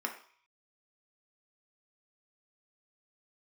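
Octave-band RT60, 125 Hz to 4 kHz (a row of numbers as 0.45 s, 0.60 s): 0.55 s, 0.35 s, 0.45 s, 0.55 s, 0.60 s, 0.55 s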